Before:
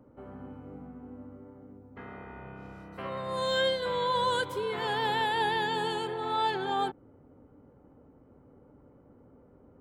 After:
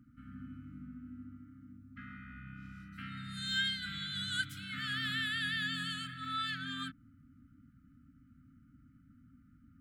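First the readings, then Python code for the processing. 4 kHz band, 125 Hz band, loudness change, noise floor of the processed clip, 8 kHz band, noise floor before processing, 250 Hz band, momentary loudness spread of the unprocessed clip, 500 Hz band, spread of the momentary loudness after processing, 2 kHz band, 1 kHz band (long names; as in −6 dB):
−1.5 dB, −1.5 dB, −7.5 dB, −63 dBFS, −1.5 dB, −59 dBFS, −3.5 dB, 19 LU, below −40 dB, 17 LU, −1.5 dB, −16.5 dB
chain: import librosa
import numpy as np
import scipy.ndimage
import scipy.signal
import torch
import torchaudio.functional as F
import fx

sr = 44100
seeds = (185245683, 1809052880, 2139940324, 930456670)

y = fx.brickwall_bandstop(x, sr, low_hz=290.0, high_hz=1200.0)
y = y * 10.0 ** (-1.5 / 20.0)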